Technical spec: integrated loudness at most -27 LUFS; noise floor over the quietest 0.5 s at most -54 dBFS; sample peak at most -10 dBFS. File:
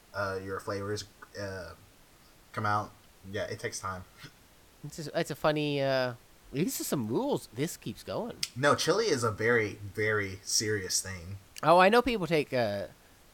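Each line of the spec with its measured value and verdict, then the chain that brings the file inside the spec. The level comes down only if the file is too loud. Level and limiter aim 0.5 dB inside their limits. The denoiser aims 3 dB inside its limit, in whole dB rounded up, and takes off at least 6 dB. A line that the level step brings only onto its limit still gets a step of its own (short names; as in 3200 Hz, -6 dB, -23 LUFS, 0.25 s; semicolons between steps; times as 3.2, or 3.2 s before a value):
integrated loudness -30.0 LUFS: OK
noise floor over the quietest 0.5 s -59 dBFS: OK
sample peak -8.5 dBFS: fail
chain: limiter -10.5 dBFS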